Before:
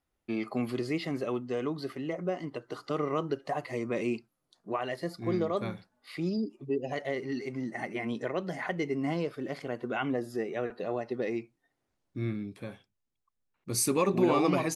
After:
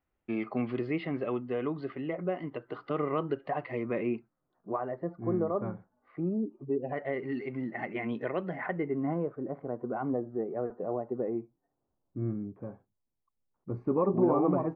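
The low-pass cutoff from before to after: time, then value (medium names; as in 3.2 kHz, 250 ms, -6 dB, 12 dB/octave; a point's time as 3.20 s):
low-pass 24 dB/octave
3.75 s 2.8 kHz
4.79 s 1.3 kHz
6.55 s 1.3 kHz
7.36 s 2.8 kHz
8.32 s 2.8 kHz
9.45 s 1.1 kHz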